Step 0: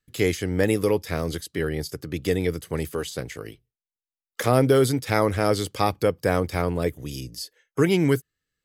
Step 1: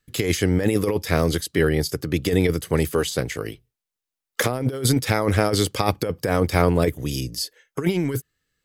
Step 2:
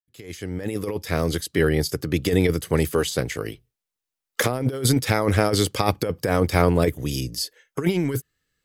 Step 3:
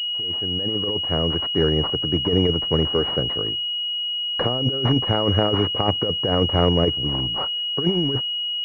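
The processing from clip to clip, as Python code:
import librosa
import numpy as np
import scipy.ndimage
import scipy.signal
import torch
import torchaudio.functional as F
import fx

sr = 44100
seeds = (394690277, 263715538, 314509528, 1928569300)

y1 = fx.over_compress(x, sr, threshold_db=-23.0, ratio=-0.5)
y1 = y1 * librosa.db_to_amplitude(4.5)
y2 = fx.fade_in_head(y1, sr, length_s=1.71)
y3 = fx.pwm(y2, sr, carrier_hz=2900.0)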